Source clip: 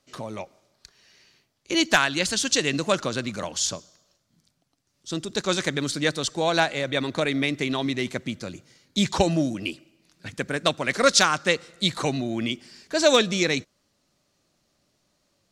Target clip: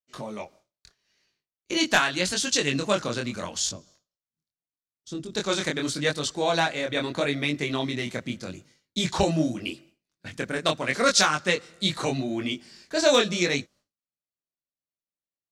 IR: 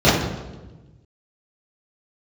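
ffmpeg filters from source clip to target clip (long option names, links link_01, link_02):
-filter_complex "[0:a]agate=range=-33dB:threshold=-48dB:ratio=3:detection=peak,asettb=1/sr,asplit=3[link_01][link_02][link_03];[link_01]atrim=end=3.694[link_04];[link_02]atrim=start=3.69:end=5.35,asetpts=PTS-STARTPTS,afade=type=in:duration=0.004:curve=qsin,afade=type=out:start_time=1.656:duration=0.004:curve=qsin,acrossover=split=410[link_05][link_06];[link_06]acompressor=threshold=-41dB:ratio=10[link_07];[link_05][link_07]amix=inputs=2:normalize=0[link_08];[link_03]atrim=start=5.346[link_09];[link_04][link_08]acrossfade=duration=0.004:curve1=hsin:curve2=qsin[link_10];[link_10][link_09]acrossfade=duration=0.004:curve1=qsin:curve2=hsin,flanger=delay=20:depth=5.5:speed=0.8,volume=1.5dB"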